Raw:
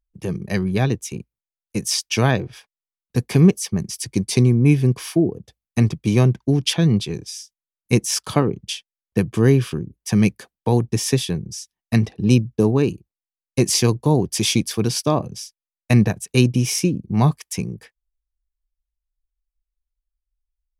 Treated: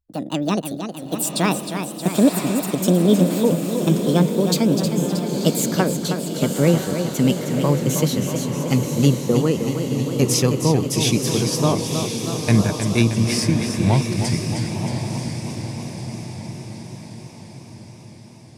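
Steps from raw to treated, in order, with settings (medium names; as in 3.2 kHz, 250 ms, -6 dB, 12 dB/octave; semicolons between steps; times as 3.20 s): gliding tape speed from 159% -> 65%; echo that smears into a reverb 1001 ms, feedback 52%, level -6.5 dB; modulated delay 315 ms, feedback 67%, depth 85 cents, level -8 dB; trim -1.5 dB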